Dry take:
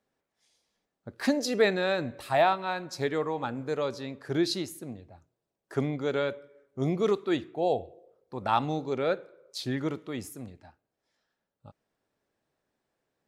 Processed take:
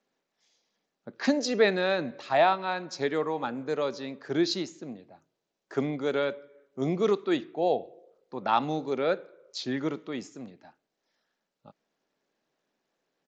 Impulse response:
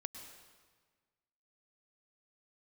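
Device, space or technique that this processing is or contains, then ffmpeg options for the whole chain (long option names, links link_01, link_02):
Bluetooth headset: -af "highpass=frequency=160:width=0.5412,highpass=frequency=160:width=1.3066,aresample=16000,aresample=44100,volume=1dB" -ar 16000 -c:a sbc -b:a 64k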